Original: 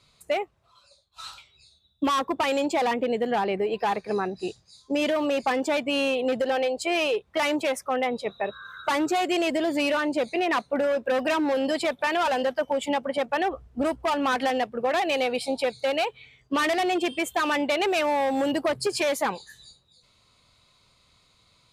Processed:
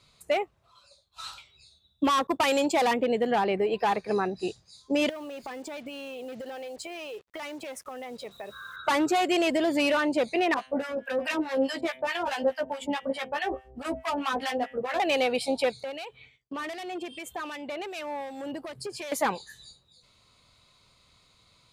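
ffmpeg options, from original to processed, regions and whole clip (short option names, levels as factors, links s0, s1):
-filter_complex "[0:a]asettb=1/sr,asplit=3[s0][s1][s2];[s0]atrim=end=2.274[s3];[s1]atrim=start=2.27:end=2.98,asetpts=PTS-STARTPTS,afade=t=in:d=0.004:c=qsin,afade=t=out:st=0.706:d=0.004:c=qsin,agate=range=0.0224:threshold=0.0282:ratio=3:release=100:detection=peak,highshelf=f=5100:g=7[s4];[s2]atrim=start=2.976[s5];[s3][s4]acrossfade=d=0.004:c1=hsin:c2=qsin[s6];[s6][s5]acrossfade=d=0.004:c1=qsin:c2=hsin,asettb=1/sr,asplit=3[s7][s8][s9];[s7]atrim=end=5.094[s10];[s8]atrim=start=5.09:end=8.76,asetpts=PTS-STARTPTS,afade=t=in:d=0.004:c=qsin,afade=t=out:st=3.666:d=0.004:c=qsin,acompressor=threshold=0.0178:ratio=16:attack=3.2:release=140:knee=1:detection=peak,acrusher=bits=8:mix=0:aa=0.5[s11];[s9]atrim=start=8.756[s12];[s10][s11]acrossfade=d=0.004:c1=hsin:c2=qsin[s13];[s13][s12]acrossfade=d=0.004:c1=qsin:c2=hsin,asettb=1/sr,asplit=3[s14][s15][s16];[s14]atrim=end=10.544[s17];[s15]atrim=start=10.54:end=15,asetpts=PTS-STARTPTS,afade=t=in:d=0.004:c=qsin,afade=t=out:st=4.456:d=0.004:c=qsin,asplit=2[s18][s19];[s19]adelay=15,volume=0.562[s20];[s18][s20]amix=inputs=2:normalize=0,atrim=end_sample=196686,bandreject=f=129.9:t=h:w=4,bandreject=f=259.8:t=h:w=4,bandreject=f=389.7:t=h:w=4,bandreject=f=519.6:t=h:w=4,bandreject=f=649.5:t=h:w=4,bandreject=f=779.4:t=h:w=4,bandreject=f=909.3:t=h:w=4,bandreject=f=1039.2:t=h:w=4,bandreject=f=1169.1:t=h:w=4,bandreject=f=1299:t=h:w=4,bandreject=f=1428.9:t=h:w=4,bandreject=f=1558.8:t=h:w=4,bandreject=f=1688.7:t=h:w=4,bandreject=f=1818.6:t=h:w=4,bandreject=f=1948.5:t=h:w=4,bandreject=f=2078.4:t=h:w=4,bandreject=f=2208.3:t=h:w=4,bandreject=f=2338.2:t=h:w=4,bandreject=f=2468.1:t=h:w=4,bandreject=f=2598:t=h:w=4,bandreject=f=2727.9:t=h:w=4,bandreject=f=2857.8:t=h:w=4,bandreject=f=2987.7:t=h:w=4,bandreject=f=3117.6:t=h:w=4,bandreject=f=3247.5:t=h:w=4,bandreject=f=3377.4:t=h:w=4,bandreject=f=3507.3:t=h:w=4,bandreject=f=3637.2:t=h:w=4,bandreject=f=3767.1:t=h:w=4,acrossover=split=900[s21][s22];[s21]aeval=exprs='val(0)*(1-1/2+1/2*cos(2*PI*4.7*n/s))':c=same[s23];[s22]aeval=exprs='val(0)*(1-1/2-1/2*cos(2*PI*4.7*n/s))':c=same[s24];[s23][s24]amix=inputs=2:normalize=0[s25];[s16]atrim=start=14.996[s26];[s17][s25]acrossfade=d=0.004:c1=hsin:c2=qsin[s27];[s27][s26]acrossfade=d=0.004:c1=qsin:c2=hsin,asettb=1/sr,asplit=3[s28][s29][s30];[s28]atrim=end=15.834[s31];[s29]atrim=start=15.83:end=19.12,asetpts=PTS-STARTPTS,afade=t=in:d=0.004:c=qsin,afade=t=out:st=3.286:d=0.004:c=qsin,agate=range=0.0224:threshold=0.00316:ratio=3:release=100:detection=peak,acompressor=threshold=0.0224:ratio=4:attack=3.2:release=140:knee=1:detection=peak,acrossover=split=2100[s32][s33];[s32]aeval=exprs='val(0)*(1-0.5/2+0.5/2*cos(2*PI*2.6*n/s))':c=same[s34];[s33]aeval=exprs='val(0)*(1-0.5/2-0.5/2*cos(2*PI*2.6*n/s))':c=same[s35];[s34][s35]amix=inputs=2:normalize=0[s36];[s30]atrim=start=19.116[s37];[s31][s36]acrossfade=d=0.004:c1=hsin:c2=qsin[s38];[s38][s37]acrossfade=d=0.004:c1=qsin:c2=hsin"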